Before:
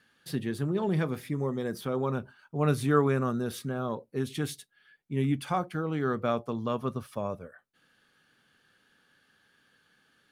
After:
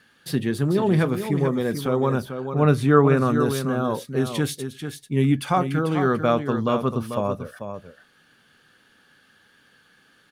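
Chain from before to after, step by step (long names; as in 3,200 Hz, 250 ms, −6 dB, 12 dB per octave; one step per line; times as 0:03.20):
0:02.21–0:03.17: high-shelf EQ 4,700 Hz −10 dB
single-tap delay 442 ms −8.5 dB
level +8 dB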